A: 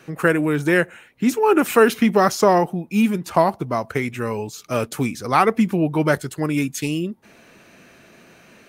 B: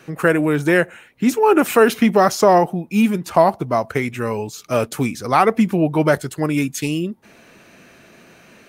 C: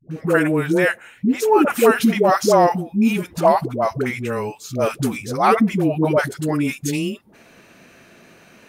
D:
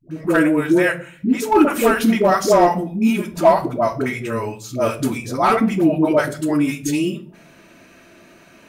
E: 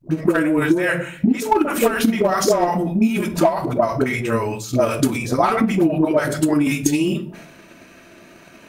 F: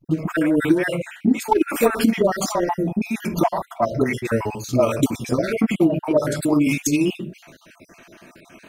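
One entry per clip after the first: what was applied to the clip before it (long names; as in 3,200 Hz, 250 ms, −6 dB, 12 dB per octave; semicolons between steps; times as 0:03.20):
dynamic equaliser 660 Hz, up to +4 dB, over −29 dBFS, Q 1.9; in parallel at −0.5 dB: brickwall limiter −7 dBFS, peak gain reduction 6.5 dB; on the sum: level −4 dB
all-pass dispersion highs, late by 110 ms, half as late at 490 Hz; level −1 dB
hard clipping −7.5 dBFS, distortion −22 dB; on a send at −4 dB: convolution reverb RT60 0.45 s, pre-delay 3 ms; on the sum: level −1 dB
transient designer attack +11 dB, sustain +7 dB; downward compressor 8 to 1, threshold −14 dBFS, peak gain reduction 15 dB; level +1 dB
time-frequency cells dropped at random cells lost 39%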